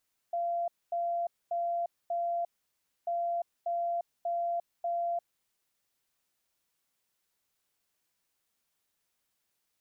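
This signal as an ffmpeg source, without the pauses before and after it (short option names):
-f lavfi -i "aevalsrc='0.0376*sin(2*PI*688*t)*clip(min(mod(mod(t,2.74),0.59),0.35-mod(mod(t,2.74),0.59))/0.005,0,1)*lt(mod(t,2.74),2.36)':d=5.48:s=44100"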